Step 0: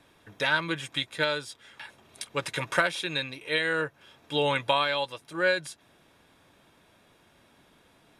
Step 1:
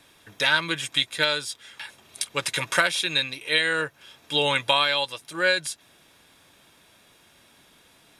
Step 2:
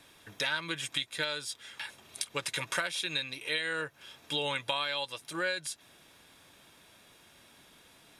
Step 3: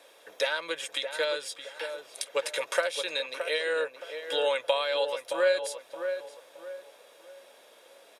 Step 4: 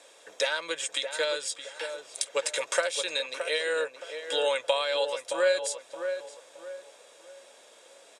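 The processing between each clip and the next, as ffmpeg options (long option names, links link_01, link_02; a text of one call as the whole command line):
ffmpeg -i in.wav -af "highshelf=frequency=2200:gain=11" out.wav
ffmpeg -i in.wav -af "acompressor=threshold=-31dB:ratio=2.5,volume=-2dB" out.wav
ffmpeg -i in.wav -filter_complex "[0:a]highpass=frequency=520:width_type=q:width=4.9,asplit=2[link_01][link_02];[link_02]adelay=620,lowpass=frequency=1600:poles=1,volume=-7dB,asplit=2[link_03][link_04];[link_04]adelay=620,lowpass=frequency=1600:poles=1,volume=0.37,asplit=2[link_05][link_06];[link_06]adelay=620,lowpass=frequency=1600:poles=1,volume=0.37,asplit=2[link_07][link_08];[link_08]adelay=620,lowpass=frequency=1600:poles=1,volume=0.37[link_09];[link_01][link_03][link_05][link_07][link_09]amix=inputs=5:normalize=0" out.wav
ffmpeg -i in.wav -af "lowpass=frequency=7800:width_type=q:width=3.2" out.wav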